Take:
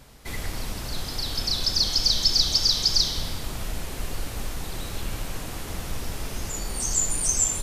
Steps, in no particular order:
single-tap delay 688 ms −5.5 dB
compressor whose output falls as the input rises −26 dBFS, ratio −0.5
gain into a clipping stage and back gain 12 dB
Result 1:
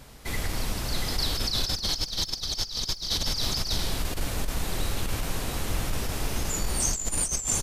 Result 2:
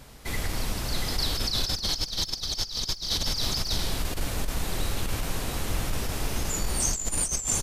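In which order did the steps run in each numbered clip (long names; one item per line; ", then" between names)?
single-tap delay, then gain into a clipping stage and back, then compressor whose output falls as the input rises
gain into a clipping stage and back, then single-tap delay, then compressor whose output falls as the input rises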